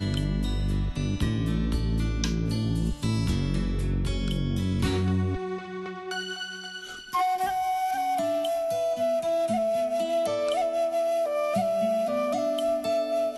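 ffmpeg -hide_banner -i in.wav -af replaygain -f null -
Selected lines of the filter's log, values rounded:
track_gain = +9.9 dB
track_peak = 0.159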